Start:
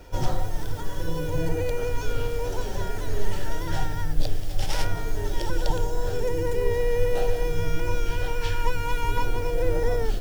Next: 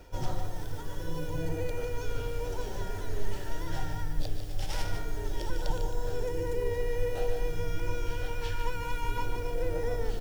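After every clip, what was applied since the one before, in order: reverse; upward compressor, threshold -21 dBFS; reverse; delay 149 ms -8 dB; trim -7.5 dB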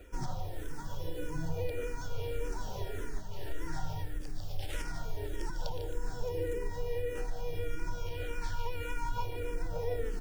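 compression, threshold -26 dBFS, peak gain reduction 7 dB; barber-pole phaser -1.7 Hz; trim +1 dB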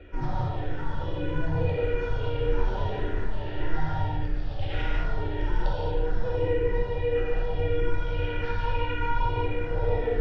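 low-pass 3.4 kHz 24 dB/octave; gated-style reverb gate 260 ms flat, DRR -5.5 dB; trim +3.5 dB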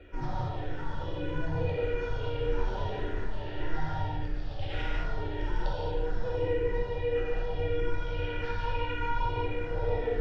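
tone controls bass -2 dB, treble +4 dB; trim -3 dB

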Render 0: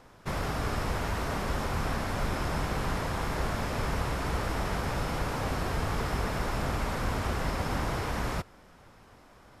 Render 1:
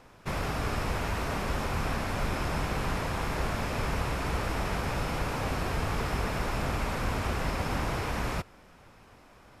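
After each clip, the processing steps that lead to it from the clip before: peaking EQ 2.5 kHz +4.5 dB 0.31 oct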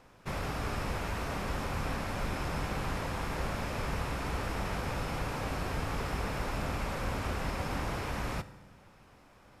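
reverberation RT60 1.2 s, pre-delay 3 ms, DRR 13 dB; trim -4 dB

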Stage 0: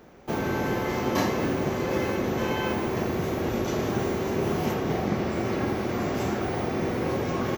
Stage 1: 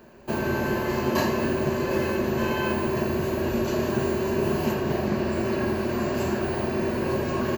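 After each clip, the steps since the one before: rippled EQ curve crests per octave 1.4, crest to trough 9 dB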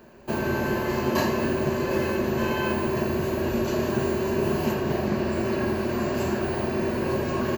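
no audible change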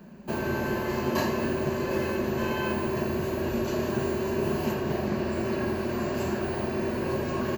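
band noise 150–250 Hz -46 dBFS; trim -3 dB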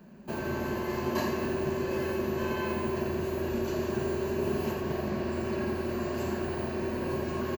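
feedback delay 86 ms, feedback 57%, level -9.5 dB; trim -4.5 dB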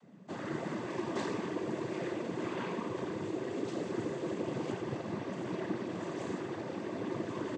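noise-vocoded speech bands 16; trim -5 dB

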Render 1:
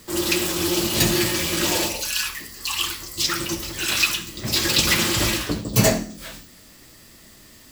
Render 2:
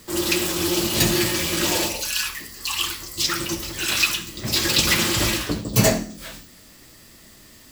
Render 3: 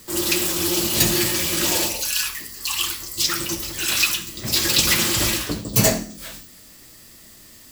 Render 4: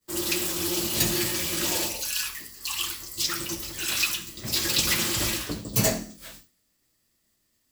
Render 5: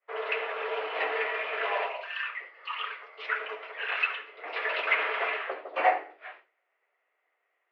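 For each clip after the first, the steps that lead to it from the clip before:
no audible change
treble shelf 5.8 kHz +7 dB; trim -1.5 dB
expander -33 dBFS; trim -6 dB
mistuned SSB +95 Hz 450–2300 Hz; trim +6 dB

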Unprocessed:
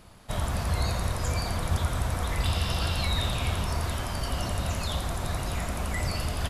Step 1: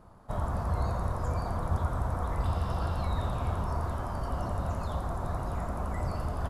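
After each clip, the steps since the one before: resonant high shelf 1.7 kHz -13.5 dB, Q 1.5; trim -2.5 dB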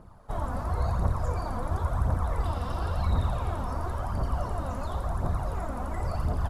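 phaser 0.95 Hz, delay 4.2 ms, feedback 50%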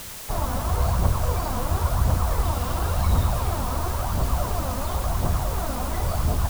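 added noise white -43 dBFS; trim +5 dB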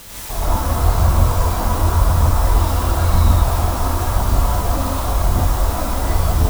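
gated-style reverb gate 190 ms rising, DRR -7.5 dB; trim -2 dB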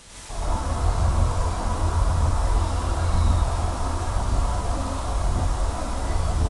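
resampled via 22.05 kHz; trim -7 dB

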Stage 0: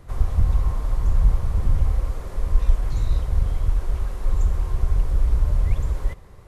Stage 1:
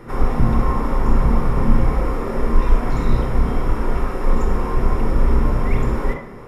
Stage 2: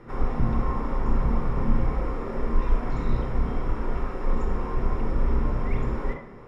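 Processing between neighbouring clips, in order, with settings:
bass shelf 270 Hz +11.5 dB; reverberation RT60 0.50 s, pre-delay 28 ms, DRR 2.5 dB; trim +3 dB
distance through air 73 m; trim -7.5 dB

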